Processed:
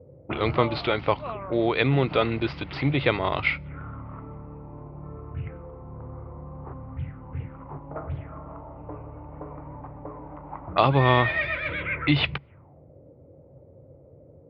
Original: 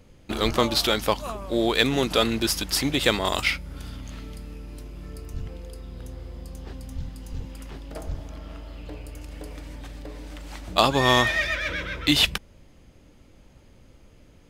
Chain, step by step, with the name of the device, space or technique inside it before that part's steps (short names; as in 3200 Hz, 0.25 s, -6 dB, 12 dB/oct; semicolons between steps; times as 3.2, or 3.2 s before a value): envelope filter bass rig (envelope low-pass 470–4500 Hz up, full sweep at -24.5 dBFS; speaker cabinet 71–2200 Hz, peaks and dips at 92 Hz +5 dB, 140 Hz +10 dB, 210 Hz -8 dB, 1700 Hz -8 dB); bell 2100 Hz +3.5 dB 0.66 oct